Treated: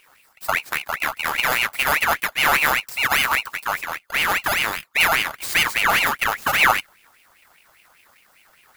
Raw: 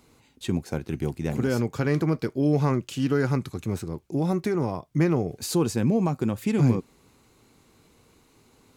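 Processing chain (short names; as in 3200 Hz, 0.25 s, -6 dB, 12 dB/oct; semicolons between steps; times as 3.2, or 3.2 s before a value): FFT order left unsorted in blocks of 32 samples; formant shift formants +3 st; ring modulator with a swept carrier 1800 Hz, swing 45%, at 5 Hz; gain +6.5 dB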